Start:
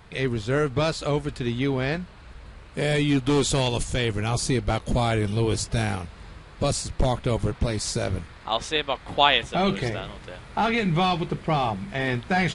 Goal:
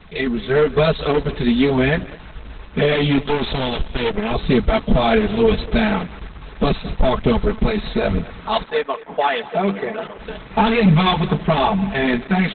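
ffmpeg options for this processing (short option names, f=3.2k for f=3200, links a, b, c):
-filter_complex "[0:a]aecho=1:1:4.6:0.98,dynaudnorm=f=110:g=11:m=5dB,volume=13dB,asoftclip=hard,volume=-13dB,acrusher=bits=7:mix=0:aa=0.000001,flanger=delay=0.1:depth=6.5:regen=-19:speed=1.1:shape=triangular,asettb=1/sr,asplit=3[a][b][c];[a]atrim=end=3.184[d];[b]atrim=start=3.18:end=4.31,asetpts=PTS-STARTPTS,afade=t=in:d=0.004:c=qsin,afade=t=out:st=1.126:d=0.004:c=qsin,aeval=exprs='max(val(0),0)':c=same[e];[c]atrim=start=4.306[f];[d][e]acrossfade=d=0.004:c1=hsin:c2=qsin[g];[g][f]acrossfade=d=0.004:c1=qsin:c2=hsin,asettb=1/sr,asplit=3[h][i][j];[h]atrim=end=8.644[k];[i]atrim=start=8.64:end=10.19,asetpts=PTS-STARTPTS,afade=t=in:d=0.004:c=qsin,afade=t=out:st=1.546:d=0.004:c=qsin,highpass=250,lowpass=2k[l];[j]atrim=start=10.186[m];[k][l]acrossfade=d=0.004:c1=hsin:c2=qsin[n];[n][m]acrossfade=d=0.004:c1=qsin:c2=hsin,aecho=1:1:218:0.126,volume=6.5dB" -ar 48000 -c:a libopus -b:a 8k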